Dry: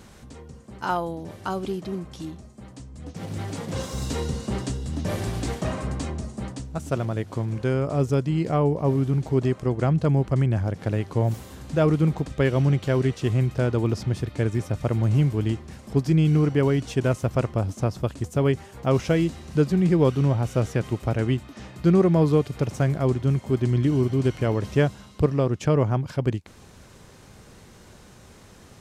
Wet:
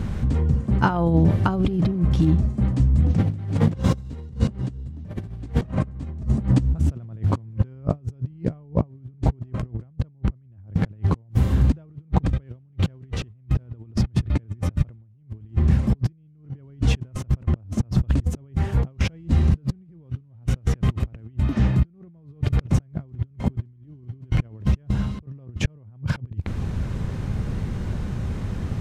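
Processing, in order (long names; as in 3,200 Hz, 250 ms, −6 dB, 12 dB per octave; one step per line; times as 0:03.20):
bass and treble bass +15 dB, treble −11 dB
compressor whose output falls as the input rises −25 dBFS, ratio −0.5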